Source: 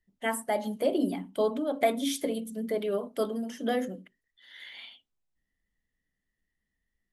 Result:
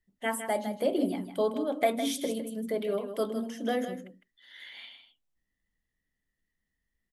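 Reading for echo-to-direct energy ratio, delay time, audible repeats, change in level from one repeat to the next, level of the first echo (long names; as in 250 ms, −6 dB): −9.5 dB, 157 ms, 1, repeats not evenly spaced, −9.5 dB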